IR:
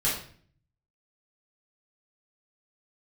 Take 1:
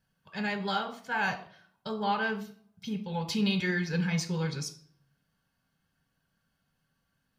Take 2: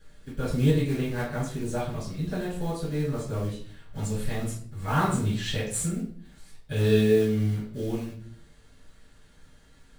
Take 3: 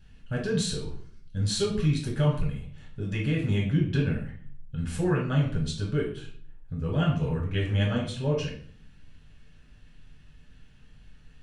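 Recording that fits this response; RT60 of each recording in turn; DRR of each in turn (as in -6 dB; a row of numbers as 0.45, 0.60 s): 2; 0.50, 0.50, 0.50 s; 7.0, -8.0, -2.5 dB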